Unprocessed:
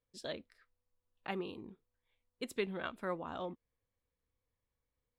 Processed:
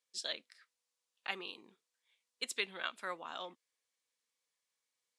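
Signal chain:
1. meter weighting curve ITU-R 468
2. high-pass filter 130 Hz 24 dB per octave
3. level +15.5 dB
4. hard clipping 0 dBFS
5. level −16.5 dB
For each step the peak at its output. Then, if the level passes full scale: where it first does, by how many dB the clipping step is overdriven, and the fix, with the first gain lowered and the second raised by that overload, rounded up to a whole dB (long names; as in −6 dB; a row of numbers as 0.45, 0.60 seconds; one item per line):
−18.5, −19.0, −3.5, −3.5, −20.0 dBFS
no step passes full scale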